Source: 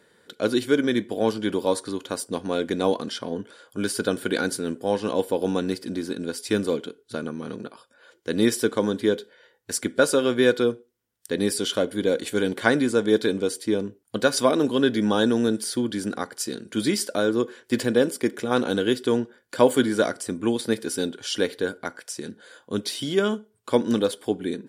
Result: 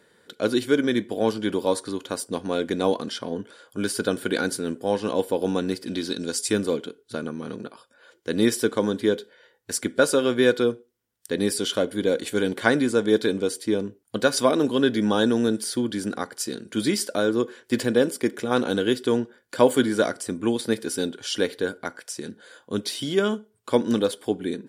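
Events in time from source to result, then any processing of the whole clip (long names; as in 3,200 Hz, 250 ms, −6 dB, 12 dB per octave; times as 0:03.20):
0:05.87–0:06.50: parametric band 2,700 Hz → 8,800 Hz +12 dB 1.1 octaves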